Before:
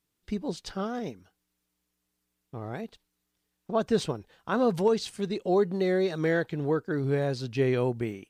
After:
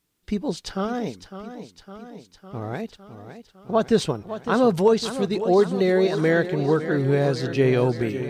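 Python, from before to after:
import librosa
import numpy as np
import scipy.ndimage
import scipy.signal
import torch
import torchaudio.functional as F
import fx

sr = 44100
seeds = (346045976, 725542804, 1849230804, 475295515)

y = fx.echo_warbled(x, sr, ms=557, feedback_pct=68, rate_hz=2.8, cents=65, wet_db=-11.5)
y = F.gain(torch.from_numpy(y), 6.0).numpy()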